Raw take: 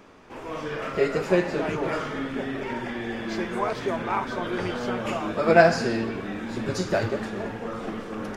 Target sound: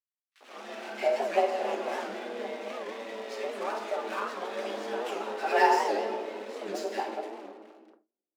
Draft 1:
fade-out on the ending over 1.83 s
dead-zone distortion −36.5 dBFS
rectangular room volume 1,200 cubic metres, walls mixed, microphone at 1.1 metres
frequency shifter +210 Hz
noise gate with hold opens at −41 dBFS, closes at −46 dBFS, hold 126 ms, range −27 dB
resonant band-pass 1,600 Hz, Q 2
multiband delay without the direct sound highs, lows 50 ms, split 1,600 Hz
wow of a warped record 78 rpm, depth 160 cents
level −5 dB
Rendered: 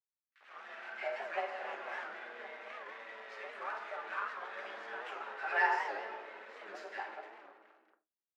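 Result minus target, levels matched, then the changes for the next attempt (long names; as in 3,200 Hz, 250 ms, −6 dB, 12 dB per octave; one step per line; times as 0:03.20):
2,000 Hz band +7.0 dB
remove: resonant band-pass 1,600 Hz, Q 2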